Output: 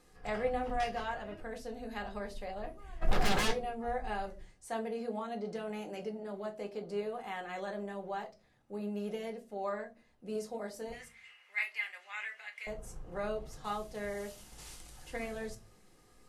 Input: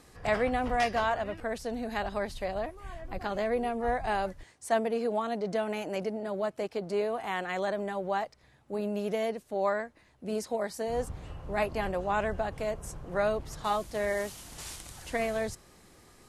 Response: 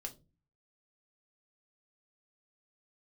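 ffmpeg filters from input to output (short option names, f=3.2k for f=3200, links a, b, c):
-filter_complex "[0:a]asplit=3[a][b][c];[a]afade=t=out:st=3.01:d=0.02[d];[b]aeval=exprs='0.106*sin(PI/2*7.08*val(0)/0.106)':c=same,afade=t=in:st=3.01:d=0.02,afade=t=out:st=3.5:d=0.02[e];[c]afade=t=in:st=3.5:d=0.02[f];[d][e][f]amix=inputs=3:normalize=0,asettb=1/sr,asplit=3[g][h][i];[g]atrim=end=10.924[j];[h]atrim=start=10.92:end=12.67,asetpts=PTS-STARTPTS,afade=t=in:d=0.004:c=qsin,afade=t=out:st=1.746:d=0.004:c=qsin,highpass=f=2.1k:t=q:w=6.4[k];[i]atrim=start=12.666[l];[j][k]acrossfade=d=0.004:c1=hsin:c2=qsin[m];[m][l]acrossfade=d=0.004:c1=qsin:c2=hsin[n];[1:a]atrim=start_sample=2205[o];[n][o]afir=irnorm=-1:irlink=0,volume=-5dB"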